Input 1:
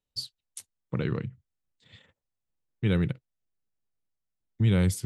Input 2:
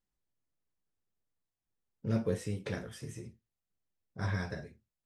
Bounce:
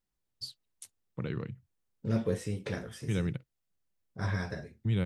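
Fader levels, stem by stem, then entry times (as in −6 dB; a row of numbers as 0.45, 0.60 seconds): −6.5, +1.5 decibels; 0.25, 0.00 seconds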